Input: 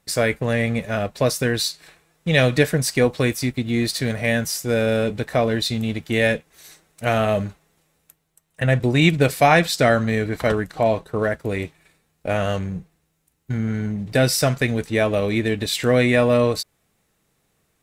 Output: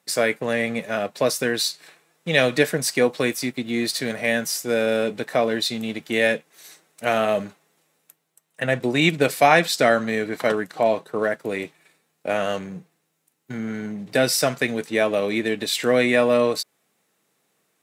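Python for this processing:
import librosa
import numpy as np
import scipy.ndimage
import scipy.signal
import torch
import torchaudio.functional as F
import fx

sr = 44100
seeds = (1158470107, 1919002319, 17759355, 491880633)

y = scipy.signal.sosfilt(scipy.signal.bessel(4, 240.0, 'highpass', norm='mag', fs=sr, output='sos'), x)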